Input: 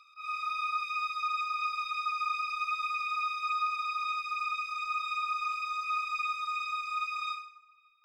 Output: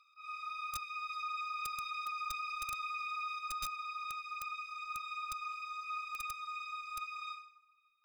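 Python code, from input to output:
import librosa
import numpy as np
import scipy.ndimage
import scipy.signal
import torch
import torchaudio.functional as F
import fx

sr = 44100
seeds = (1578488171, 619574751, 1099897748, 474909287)

y = (np.mod(10.0 ** (24.0 / 20.0) * x + 1.0, 2.0) - 1.0) / 10.0 ** (24.0 / 20.0)
y = fx.env_flatten(y, sr, amount_pct=50, at=(1.09, 3.39))
y = y * librosa.db_to_amplitude(-8.5)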